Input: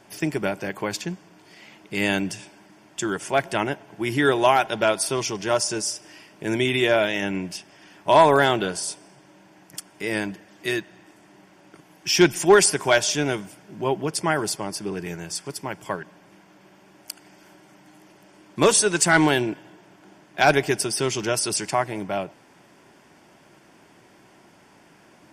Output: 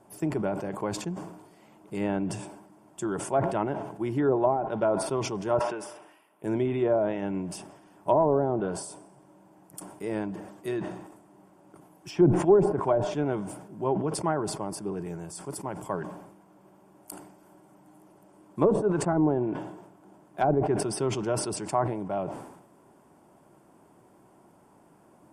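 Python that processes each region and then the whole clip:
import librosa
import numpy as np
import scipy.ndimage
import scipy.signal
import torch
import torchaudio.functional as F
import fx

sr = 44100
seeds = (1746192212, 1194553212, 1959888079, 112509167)

y = fx.chain(x, sr, fx.highpass(hz=1400.0, slope=6),
    fx.env_lowpass_down(base_hz=2800.0, full_db=-25.0),
    fx.band_shelf(hz=5900.0, db=-12.5, octaves=1.3), at=(5.59, 6.44))
y = fx.env_lowpass_down(y, sr, base_hz=590.0, full_db=-13.5)
y = fx.band_shelf(y, sr, hz=3200.0, db=-14.0, octaves=2.3)
y = fx.sustainer(y, sr, db_per_s=62.0)
y = y * 10.0 ** (-3.5 / 20.0)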